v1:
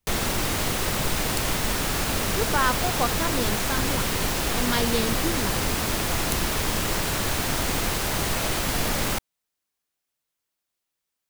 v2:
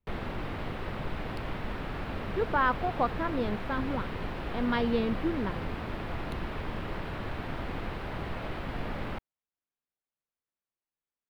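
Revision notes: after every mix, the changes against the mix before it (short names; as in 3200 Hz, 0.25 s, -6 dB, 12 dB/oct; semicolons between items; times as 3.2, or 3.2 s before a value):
background -7.5 dB; master: add air absorption 460 m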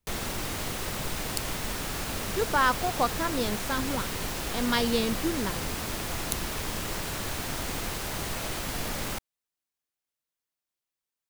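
master: remove air absorption 460 m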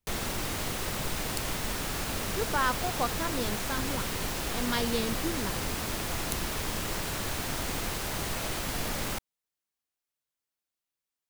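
speech -4.5 dB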